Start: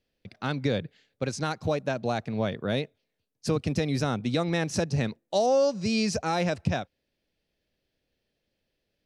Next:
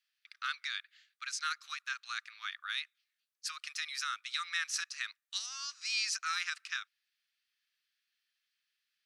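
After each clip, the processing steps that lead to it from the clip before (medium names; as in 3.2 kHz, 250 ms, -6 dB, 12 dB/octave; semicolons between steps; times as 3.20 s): Chebyshev high-pass 1.2 kHz, order 6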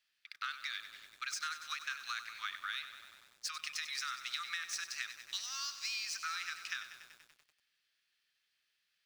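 median filter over 3 samples; compression 20:1, threshold -40 dBFS, peak gain reduction 12 dB; bit-crushed delay 96 ms, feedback 80%, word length 10-bit, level -11 dB; trim +4 dB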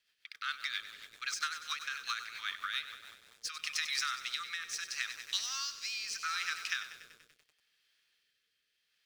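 rotary cabinet horn 7.5 Hz, later 0.75 Hz, at 2.73 s; small resonant body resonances 460/3200 Hz, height 9 dB, ringing for 85 ms; trim +6 dB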